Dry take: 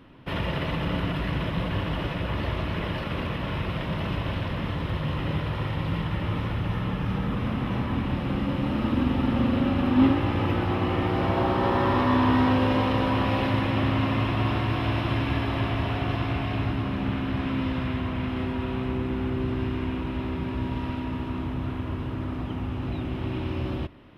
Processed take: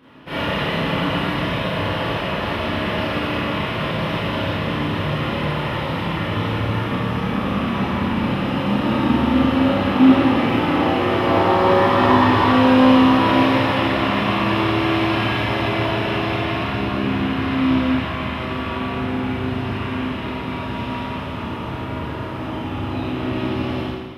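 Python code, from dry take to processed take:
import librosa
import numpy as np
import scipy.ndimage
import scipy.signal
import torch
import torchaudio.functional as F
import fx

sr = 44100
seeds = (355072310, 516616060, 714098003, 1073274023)

p1 = fx.highpass(x, sr, hz=220.0, slope=6)
p2 = np.clip(p1, -10.0 ** (-22.5 / 20.0), 10.0 ** (-22.5 / 20.0))
p3 = p1 + (p2 * 10.0 ** (-11.5 / 20.0))
p4 = fx.rev_schroeder(p3, sr, rt60_s=1.3, comb_ms=27, drr_db=-9.5)
y = p4 * 10.0 ** (-2.0 / 20.0)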